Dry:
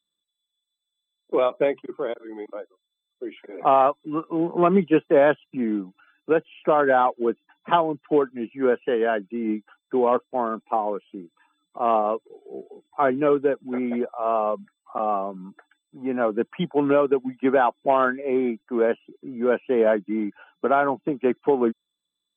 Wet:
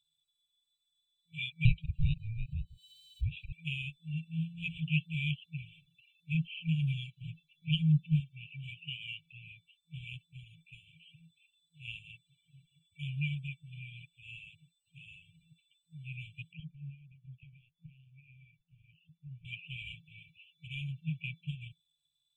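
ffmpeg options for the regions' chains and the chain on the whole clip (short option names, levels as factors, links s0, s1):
-filter_complex "[0:a]asettb=1/sr,asplit=3[s0][s1][s2];[s0]atrim=end=1.654[s3];[s1]atrim=start=1.65:end=3.53,asetpts=PTS-STARTPTS,afade=t=in:d=0.004:c=qsin,afade=t=out:st=1.876:d=0.004:c=qsin,aeval=exprs='val(0)*sin(2*PI*440*n/s)':c=same,acompressor=mode=upward:threshold=0.0112:ratio=2.5:attack=3.2:release=140:knee=2.83:detection=peak[s4];[s2]atrim=start=3.526[s5];[s3][s4]acrossfade=d=0.004:c1=hsin:c2=qsin[s6];[s6][s5]acrossfade=d=0.004:c1=qsin:c2=hsin,asettb=1/sr,asplit=3[s7][s8][s9];[s7]atrim=end=6.344[s10];[s8]atrim=start=6.34:end=8.2,asetpts=PTS-STARTPTS,afade=t=in:d=0.004:c=qsin,afade=t=out:st=1.856:d=0.004:c=qsin,lowshelf=f=240:t=q:w=1.5:g=6,acompressor=threshold=0.0562:ratio=1.5:attack=3.2:release=140:knee=1:detection=peak,aecho=1:1:6.8:0.69,atrim=end_sample=82026[s11];[s9]atrim=start=8.196[s12];[s10][s11]acrossfade=d=0.004:c1=hsin:c2=qsin[s13];[s13][s12]acrossfade=d=0.004:c1=qsin:c2=hsin,asettb=1/sr,asplit=3[s14][s15][s16];[s14]atrim=end=16.534[s17];[s15]atrim=start=16.53:end=19.45,asetpts=PTS-STARTPTS,afade=t=in:d=0.004:c=qsin,afade=t=out:st=2.916:d=0.004:c=qsin,acompressor=threshold=0.0282:ratio=12:attack=3.2:release=140:knee=1:detection=peak,lowpass=1400[s18];[s16]atrim=start=19.446[s19];[s17][s18]acrossfade=d=0.004:c1=hsin:c2=qsin[s20];[s20][s19]acrossfade=d=0.004:c1=qsin:c2=hsin,highshelf=f=3100:g=-7.5,afftfilt=real='re*(1-between(b*sr/4096,170,2300))':imag='im*(1-between(b*sr/4096,170,2300))':win_size=4096:overlap=0.75,volume=2"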